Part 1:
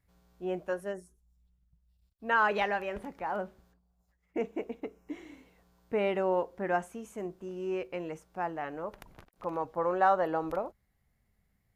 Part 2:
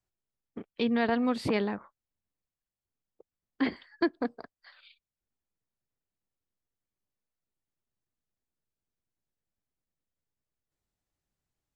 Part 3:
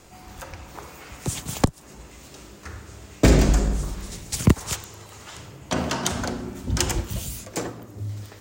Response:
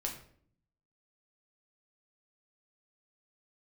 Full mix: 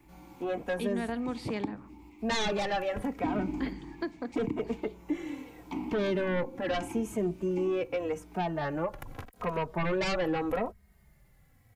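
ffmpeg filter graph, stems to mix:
-filter_complex "[0:a]equalizer=f=4.3k:w=1.2:g=-3,aeval=exprs='0.211*sin(PI/2*4.47*val(0)/0.211)':c=same,asplit=2[a][b];[b]adelay=2.9,afreqshift=-0.81[c];[a][c]amix=inputs=2:normalize=1,volume=-1.5dB[d];[1:a]volume=-4dB,asplit=2[e][f];[f]volume=-14dB[g];[2:a]asplit=3[h][i][j];[h]bandpass=f=300:t=q:w=8,volume=0dB[k];[i]bandpass=f=870:t=q:w=8,volume=-6dB[l];[j]bandpass=f=2.24k:t=q:w=8,volume=-9dB[m];[k][l][m]amix=inputs=3:normalize=0,volume=-1.5dB,asplit=2[n][o];[o]volume=-4.5dB[p];[3:a]atrim=start_sample=2205[q];[g][p]amix=inputs=2:normalize=0[r];[r][q]afir=irnorm=-1:irlink=0[s];[d][e][n][s]amix=inputs=4:normalize=0,acrossover=split=200[t][u];[u]acompressor=threshold=-40dB:ratio=1.5[v];[t][v]amix=inputs=2:normalize=0,alimiter=limit=-20.5dB:level=0:latency=1:release=211"

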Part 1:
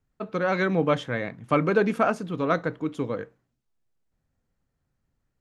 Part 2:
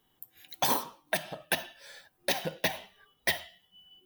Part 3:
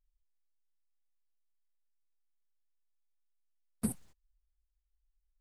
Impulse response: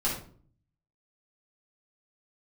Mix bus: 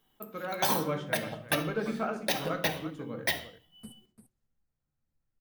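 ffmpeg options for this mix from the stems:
-filter_complex "[0:a]volume=-14.5dB,asplit=3[a][b][c];[b]volume=-9.5dB[d];[c]volume=-8.5dB[e];[1:a]volume=-2dB,asplit=2[f][g];[g]volume=-16dB[h];[2:a]volume=-15.5dB,asplit=3[i][j][k];[j]volume=-23dB[l];[k]volume=-9.5dB[m];[3:a]atrim=start_sample=2205[n];[d][h][l]amix=inputs=3:normalize=0[o];[o][n]afir=irnorm=-1:irlink=0[p];[e][m]amix=inputs=2:normalize=0,aecho=0:1:344:1[q];[a][f][i][p][q]amix=inputs=5:normalize=0"

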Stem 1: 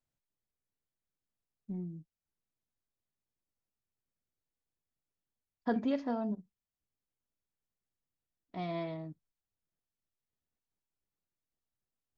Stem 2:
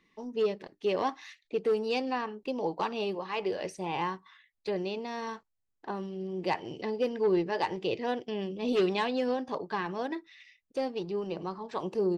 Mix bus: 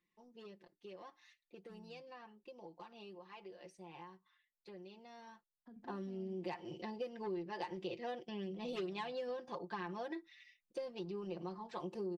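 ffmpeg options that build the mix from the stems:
-filter_complex "[0:a]acrossover=split=220[a][b];[b]acompressor=threshold=-49dB:ratio=4[c];[a][c]amix=inputs=2:normalize=0,volume=-19dB[d];[1:a]aecho=1:1:5.7:0.79,acompressor=threshold=-29dB:ratio=6,volume=-9.5dB,afade=t=in:st=5.67:d=0.22:silence=0.298538[e];[d][e]amix=inputs=2:normalize=0"

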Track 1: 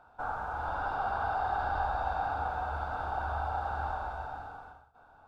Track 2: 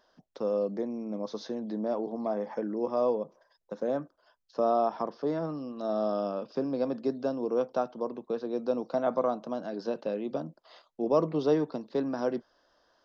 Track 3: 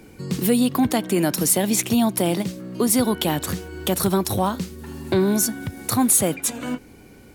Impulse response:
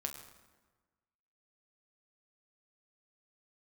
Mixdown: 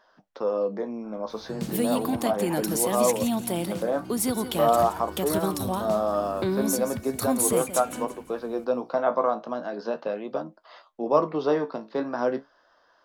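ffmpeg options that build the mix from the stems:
-filter_complex "[0:a]adelay=850,volume=-20dB[a];[1:a]equalizer=f=1.3k:w=0.52:g=10.5,flanger=delay=9.4:depth=8.8:regen=54:speed=0.38:shape=sinusoidal,volume=2.5dB[b];[2:a]adelay=1300,volume=-7.5dB,asplit=2[c][d];[d]volume=-11.5dB,aecho=0:1:171|342|513|684|855:1|0.33|0.109|0.0359|0.0119[e];[a][b][c][e]amix=inputs=4:normalize=0"

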